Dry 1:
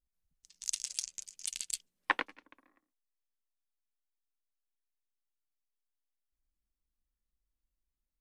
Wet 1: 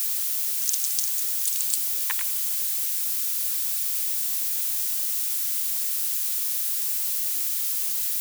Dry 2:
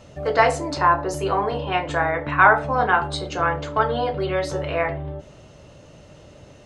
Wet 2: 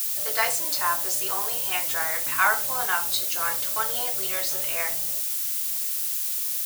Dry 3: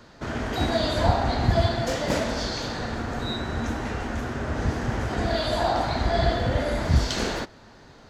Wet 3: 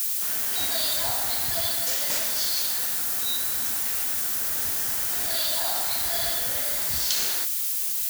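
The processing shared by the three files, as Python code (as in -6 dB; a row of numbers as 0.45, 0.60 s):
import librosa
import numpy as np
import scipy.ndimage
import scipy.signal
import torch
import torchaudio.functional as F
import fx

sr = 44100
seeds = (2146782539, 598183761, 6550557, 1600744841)

y = fx.dmg_noise_colour(x, sr, seeds[0], colour='white', level_db=-38.0)
y = librosa.effects.preemphasis(y, coef=0.97, zi=[0.0])
y = y * 10.0 ** (-26 / 20.0) / np.sqrt(np.mean(np.square(y)))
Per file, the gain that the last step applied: +9.0, +7.5, +8.5 dB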